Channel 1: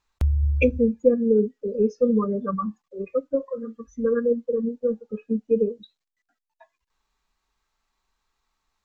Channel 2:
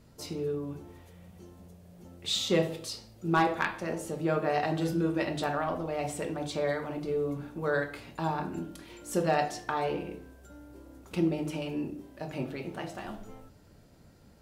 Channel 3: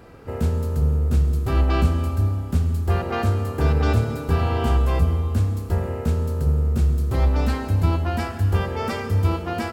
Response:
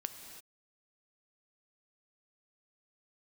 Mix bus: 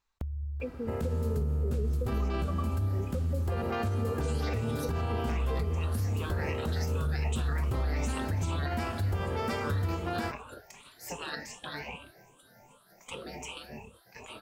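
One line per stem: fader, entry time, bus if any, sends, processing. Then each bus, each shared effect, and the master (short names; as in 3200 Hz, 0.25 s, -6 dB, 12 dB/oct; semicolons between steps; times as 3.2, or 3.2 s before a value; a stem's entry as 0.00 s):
-6.0 dB, 0.00 s, bus A, no send, de-esser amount 95%
-0.5 dB, 1.95 s, bus A, no send, moving spectral ripple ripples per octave 0.68, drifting +2.6 Hz, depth 20 dB; spectral gate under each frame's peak -15 dB weak
-4.5 dB, 0.60 s, no bus, send -14.5 dB, compressor, threshold -22 dBFS, peak gain reduction 10 dB
bus A: 0.0 dB, compressor 6:1, threshold -34 dBFS, peak gain reduction 15.5 dB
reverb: on, pre-delay 3 ms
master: limiter -22.5 dBFS, peak gain reduction 6.5 dB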